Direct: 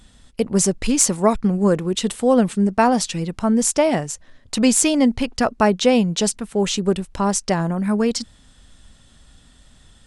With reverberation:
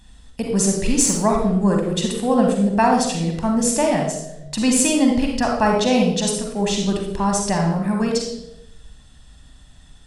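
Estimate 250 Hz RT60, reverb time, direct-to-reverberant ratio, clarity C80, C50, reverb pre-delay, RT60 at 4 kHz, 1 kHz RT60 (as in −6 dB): 1.1 s, 0.90 s, 1.0 dB, 6.5 dB, 3.0 dB, 40 ms, 0.65 s, 0.75 s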